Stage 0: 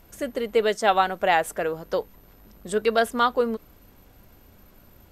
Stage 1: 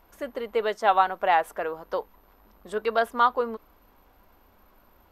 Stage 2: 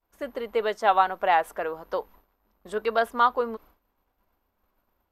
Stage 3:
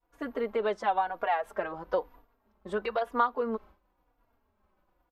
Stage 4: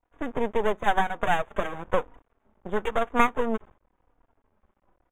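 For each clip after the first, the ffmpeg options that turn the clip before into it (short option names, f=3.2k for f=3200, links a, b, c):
-af "equalizer=f=125:t=o:w=1:g=-12,equalizer=f=1k:t=o:w=1:g=9,equalizer=f=8k:t=o:w=1:g=-9,volume=-5.5dB"
-af "agate=range=-33dB:threshold=-47dB:ratio=3:detection=peak"
-filter_complex "[0:a]lowpass=f=2.3k:p=1,acompressor=threshold=-25dB:ratio=12,asplit=2[a][b];[b]adelay=3.6,afreqshift=-1[c];[a][c]amix=inputs=2:normalize=1,volume=4.5dB"
-af "adynamicsmooth=sensitivity=4.5:basefreq=1.9k,aeval=exprs='max(val(0),0)':c=same,asuperstop=centerf=4800:order=20:qfactor=2,volume=8.5dB"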